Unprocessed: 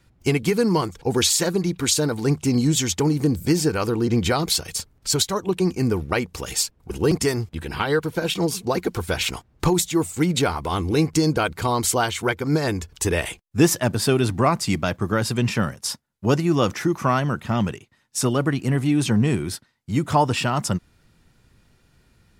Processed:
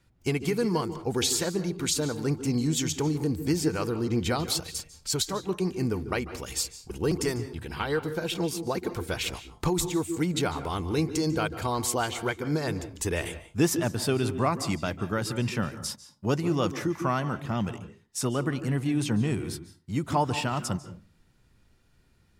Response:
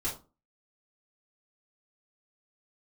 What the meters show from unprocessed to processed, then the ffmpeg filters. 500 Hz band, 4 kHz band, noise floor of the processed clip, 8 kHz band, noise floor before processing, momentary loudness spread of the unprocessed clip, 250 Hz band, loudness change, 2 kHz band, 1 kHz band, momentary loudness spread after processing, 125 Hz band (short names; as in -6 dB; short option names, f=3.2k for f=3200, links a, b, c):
-6.5 dB, -7.0 dB, -63 dBFS, -7.0 dB, -61 dBFS, 7 LU, -6.5 dB, -6.5 dB, -7.0 dB, -6.5 dB, 7 LU, -6.5 dB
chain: -filter_complex "[0:a]asplit=2[a][b];[1:a]atrim=start_sample=2205,highshelf=f=9.7k:g=-9.5,adelay=142[c];[b][c]afir=irnorm=-1:irlink=0,volume=-16.5dB[d];[a][d]amix=inputs=2:normalize=0,volume=-7dB"